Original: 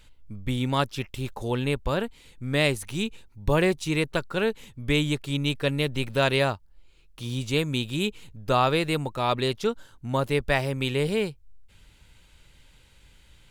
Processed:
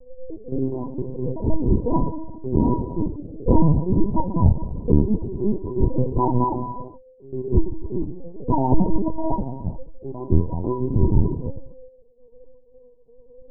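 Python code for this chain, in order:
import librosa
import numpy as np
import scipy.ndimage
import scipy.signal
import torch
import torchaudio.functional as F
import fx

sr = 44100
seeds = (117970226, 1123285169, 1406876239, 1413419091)

y = fx.band_invert(x, sr, width_hz=500)
y = scipy.signal.sosfilt(scipy.signal.cheby1(10, 1.0, 1000.0, 'lowpass', fs=sr, output='sos'), y)
y = fx.tilt_eq(y, sr, slope=-4.0)
y = fx.step_gate(y, sr, bpm=86, pattern='xx.x.xxxxxxx..', floor_db=-12.0, edge_ms=4.5)
y = fx.rev_gated(y, sr, seeds[0], gate_ms=480, shape='falling', drr_db=4.0)
y = fx.lpc_vocoder(y, sr, seeds[1], excitation='pitch_kept', order=8)
y = y * 10.0 ** (-3.0 / 20.0)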